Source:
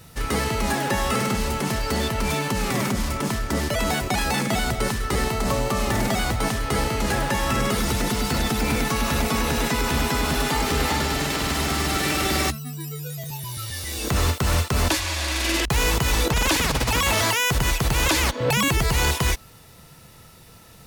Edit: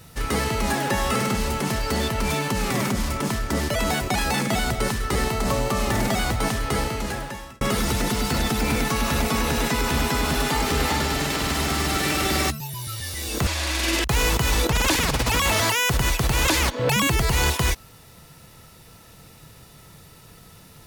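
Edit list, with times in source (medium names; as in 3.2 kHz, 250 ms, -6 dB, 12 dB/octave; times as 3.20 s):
6.67–7.61 s: fade out
12.60–13.30 s: delete
14.17–15.08 s: delete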